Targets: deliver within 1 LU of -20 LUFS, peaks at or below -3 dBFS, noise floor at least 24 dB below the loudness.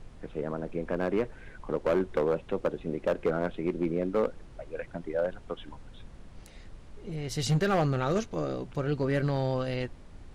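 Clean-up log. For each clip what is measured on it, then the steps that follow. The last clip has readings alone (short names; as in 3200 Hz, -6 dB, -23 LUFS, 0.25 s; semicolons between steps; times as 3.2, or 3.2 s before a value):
clipped 1.3%; flat tops at -20.0 dBFS; noise floor -49 dBFS; noise floor target -55 dBFS; loudness -31.0 LUFS; peak -20.0 dBFS; loudness target -20.0 LUFS
-> clip repair -20 dBFS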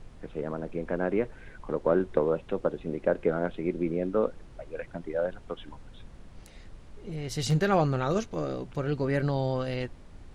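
clipped 0.0%; noise floor -49 dBFS; noise floor target -54 dBFS
-> noise print and reduce 6 dB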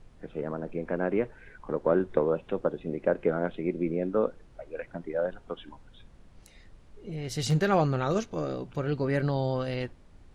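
noise floor -54 dBFS; loudness -29.5 LUFS; peak -11.0 dBFS; loudness target -20.0 LUFS
-> gain +9.5 dB; limiter -3 dBFS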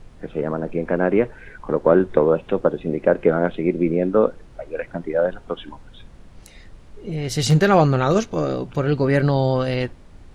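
loudness -20.5 LUFS; peak -3.0 dBFS; noise floor -45 dBFS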